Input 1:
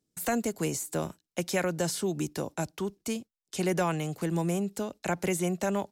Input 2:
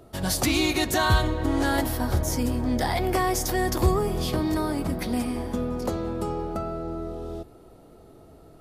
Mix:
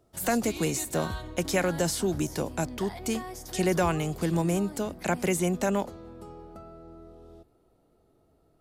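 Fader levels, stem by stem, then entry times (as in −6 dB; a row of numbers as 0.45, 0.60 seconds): +2.5, −15.5 decibels; 0.00, 0.00 seconds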